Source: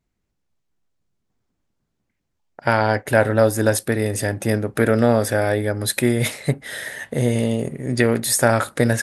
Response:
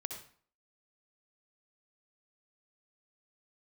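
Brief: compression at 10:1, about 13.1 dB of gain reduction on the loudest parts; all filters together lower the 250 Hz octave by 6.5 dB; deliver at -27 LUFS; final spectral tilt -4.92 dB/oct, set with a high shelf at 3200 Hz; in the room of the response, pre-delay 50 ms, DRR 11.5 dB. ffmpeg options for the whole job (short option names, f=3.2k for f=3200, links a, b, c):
-filter_complex "[0:a]equalizer=f=250:t=o:g=-8,highshelf=f=3.2k:g=-8.5,acompressor=threshold=-26dB:ratio=10,asplit=2[a][b];[1:a]atrim=start_sample=2205,adelay=50[c];[b][c]afir=irnorm=-1:irlink=0,volume=-10.5dB[d];[a][d]amix=inputs=2:normalize=0,volume=4.5dB"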